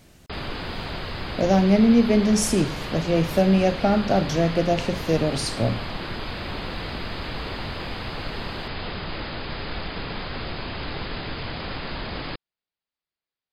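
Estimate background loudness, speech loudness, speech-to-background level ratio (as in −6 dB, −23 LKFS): −32.0 LKFS, −21.5 LKFS, 10.5 dB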